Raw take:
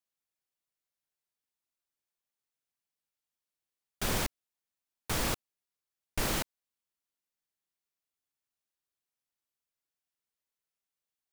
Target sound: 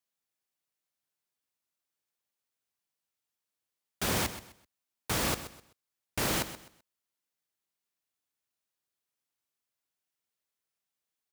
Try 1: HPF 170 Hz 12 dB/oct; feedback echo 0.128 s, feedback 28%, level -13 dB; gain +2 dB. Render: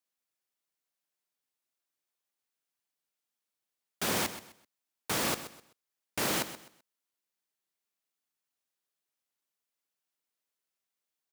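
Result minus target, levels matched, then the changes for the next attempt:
125 Hz band -5.5 dB
change: HPF 69 Hz 12 dB/oct

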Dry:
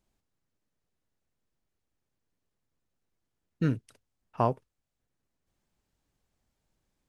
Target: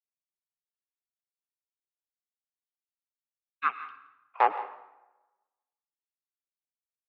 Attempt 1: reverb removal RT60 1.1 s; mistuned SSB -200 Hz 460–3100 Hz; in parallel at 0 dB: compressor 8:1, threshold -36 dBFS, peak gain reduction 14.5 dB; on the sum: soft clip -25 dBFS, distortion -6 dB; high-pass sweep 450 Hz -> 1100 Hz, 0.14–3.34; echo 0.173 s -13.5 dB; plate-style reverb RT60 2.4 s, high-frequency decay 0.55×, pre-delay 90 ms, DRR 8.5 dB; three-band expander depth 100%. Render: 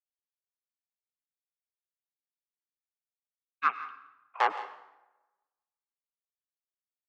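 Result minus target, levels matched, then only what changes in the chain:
soft clip: distortion +9 dB
change: soft clip -16.5 dBFS, distortion -15 dB

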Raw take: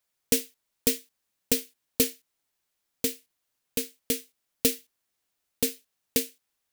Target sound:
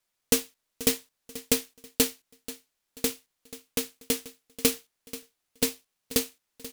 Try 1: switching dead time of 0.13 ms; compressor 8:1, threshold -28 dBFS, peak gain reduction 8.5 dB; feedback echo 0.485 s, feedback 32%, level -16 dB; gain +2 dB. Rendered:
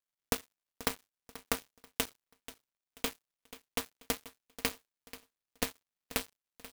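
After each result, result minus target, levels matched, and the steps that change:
compressor: peak gain reduction +8.5 dB; switching dead time: distortion +9 dB
remove: compressor 8:1, threshold -28 dBFS, peak gain reduction 8.5 dB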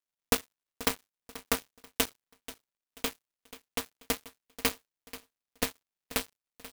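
switching dead time: distortion +9 dB
change: switching dead time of 0.029 ms

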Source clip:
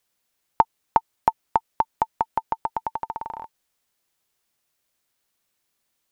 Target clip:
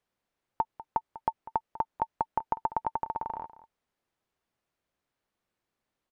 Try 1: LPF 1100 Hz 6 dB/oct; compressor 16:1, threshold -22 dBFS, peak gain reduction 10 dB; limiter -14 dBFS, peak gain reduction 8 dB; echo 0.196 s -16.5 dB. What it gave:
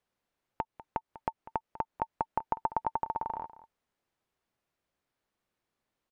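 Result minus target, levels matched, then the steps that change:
compressor: peak gain reduction +10 dB
remove: compressor 16:1, threshold -22 dBFS, peak gain reduction 10 dB

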